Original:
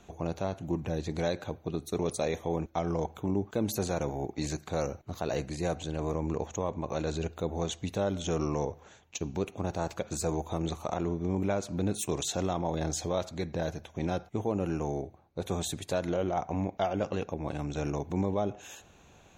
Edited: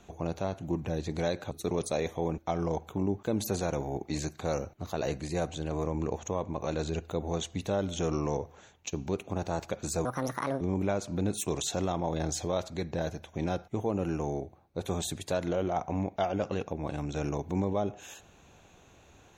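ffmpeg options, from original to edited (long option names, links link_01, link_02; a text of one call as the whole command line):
ffmpeg -i in.wav -filter_complex "[0:a]asplit=4[link_01][link_02][link_03][link_04];[link_01]atrim=end=1.512[link_05];[link_02]atrim=start=1.788:end=10.334[link_06];[link_03]atrim=start=10.33:end=11.22,asetpts=PTS-STARTPTS,asetrate=70119,aresample=44100[link_07];[link_04]atrim=start=11.216[link_08];[link_05][link_06]acrossfade=duration=0.004:curve1=hsin:curve2=hsin[link_09];[link_09][link_07]acrossfade=duration=0.004:curve1=hsin:curve2=hsin[link_10];[link_10][link_08]acrossfade=duration=0.004:curve1=hsin:curve2=hsin" out.wav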